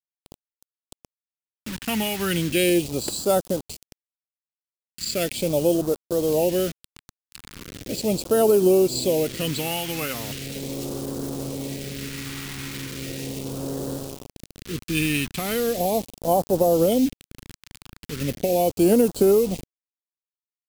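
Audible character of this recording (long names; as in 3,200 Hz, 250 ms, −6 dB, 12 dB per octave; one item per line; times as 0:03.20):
a quantiser's noise floor 6 bits, dither none
phaser sweep stages 2, 0.38 Hz, lowest notch 530–2,100 Hz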